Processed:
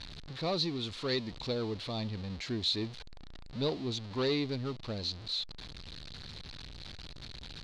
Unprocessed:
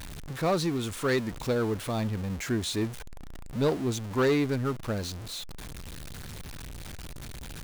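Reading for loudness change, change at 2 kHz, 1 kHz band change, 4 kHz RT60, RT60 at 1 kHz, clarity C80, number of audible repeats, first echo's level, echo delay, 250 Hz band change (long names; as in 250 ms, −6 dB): −5.5 dB, −8.5 dB, −8.5 dB, no reverb audible, no reverb audible, no reverb audible, no echo audible, no echo audible, no echo audible, −7.0 dB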